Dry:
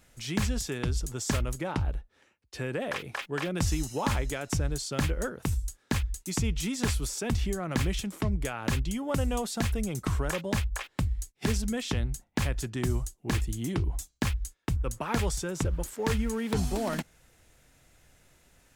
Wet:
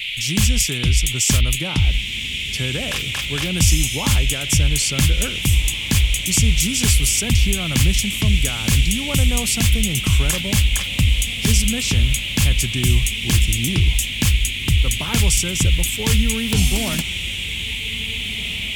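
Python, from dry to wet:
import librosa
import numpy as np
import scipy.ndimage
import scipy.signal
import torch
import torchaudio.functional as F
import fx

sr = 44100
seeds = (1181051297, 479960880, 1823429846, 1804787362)

y = fx.bass_treble(x, sr, bass_db=13, treble_db=8)
y = fx.dmg_noise_band(y, sr, seeds[0], low_hz=2100.0, high_hz=3500.0, level_db=-33.0)
y = fx.high_shelf(y, sr, hz=2500.0, db=11.0)
y = fx.echo_diffused(y, sr, ms=1810, feedback_pct=48, wet_db=-15.5)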